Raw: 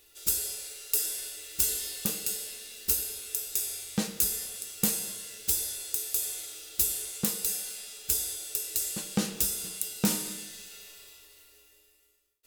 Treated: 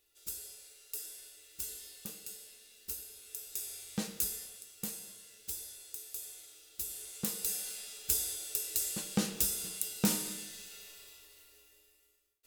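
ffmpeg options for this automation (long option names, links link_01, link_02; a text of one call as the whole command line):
ffmpeg -i in.wav -af "volume=4dB,afade=type=in:start_time=3.1:duration=1.02:silence=0.398107,afade=type=out:start_time=4.12:duration=0.56:silence=0.446684,afade=type=in:start_time=6.84:duration=0.85:silence=0.316228" out.wav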